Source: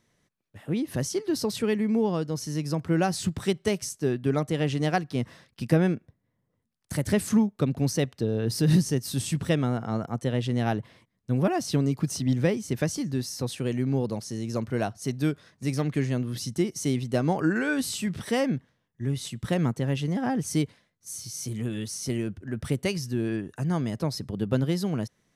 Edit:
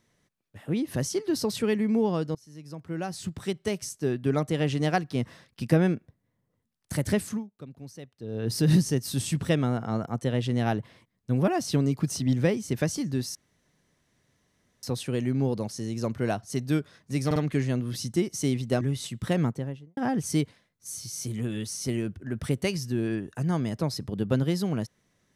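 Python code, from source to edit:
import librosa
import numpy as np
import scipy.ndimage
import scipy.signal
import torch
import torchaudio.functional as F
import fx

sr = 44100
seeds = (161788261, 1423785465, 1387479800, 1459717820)

y = fx.studio_fade_out(x, sr, start_s=19.56, length_s=0.62)
y = fx.edit(y, sr, fx.fade_in_from(start_s=2.35, length_s=2.04, floor_db=-23.5),
    fx.fade_down_up(start_s=7.09, length_s=1.45, db=-18.0, fade_s=0.35),
    fx.insert_room_tone(at_s=13.35, length_s=1.48),
    fx.stutter(start_s=15.78, slice_s=0.05, count=3),
    fx.cut(start_s=17.23, length_s=1.79), tone=tone)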